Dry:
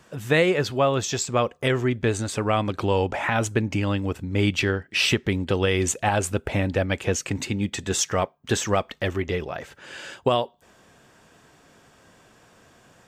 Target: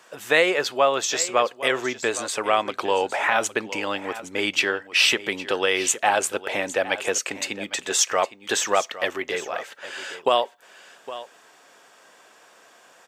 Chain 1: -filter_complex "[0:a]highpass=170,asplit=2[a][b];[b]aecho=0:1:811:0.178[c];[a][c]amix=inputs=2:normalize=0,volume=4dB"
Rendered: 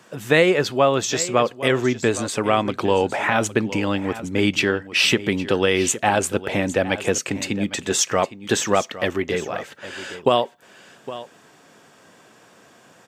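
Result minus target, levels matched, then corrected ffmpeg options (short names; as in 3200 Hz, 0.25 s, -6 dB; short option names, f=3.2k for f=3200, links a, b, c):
125 Hz band +15.5 dB
-filter_complex "[0:a]highpass=530,asplit=2[a][b];[b]aecho=0:1:811:0.178[c];[a][c]amix=inputs=2:normalize=0,volume=4dB"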